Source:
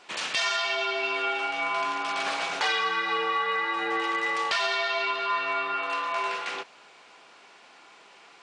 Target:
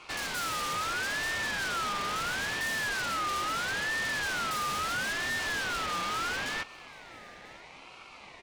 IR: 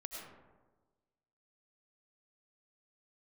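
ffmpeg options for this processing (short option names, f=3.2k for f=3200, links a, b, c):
-af "equalizer=f=490:t=o:w=1.9:g=13,aeval=exprs='0.376*(cos(1*acos(clip(val(0)/0.376,-1,1)))-cos(1*PI/2))+0.15*(cos(4*acos(clip(val(0)/0.376,-1,1)))-cos(4*PI/2))+0.0596*(cos(8*acos(clip(val(0)/0.376,-1,1)))-cos(8*PI/2))':c=same,asoftclip=type=hard:threshold=-27dB,aecho=1:1:996:0.075,aeval=exprs='val(0)*sin(2*PI*1500*n/s+1500*0.2/0.75*sin(2*PI*0.75*n/s))':c=same"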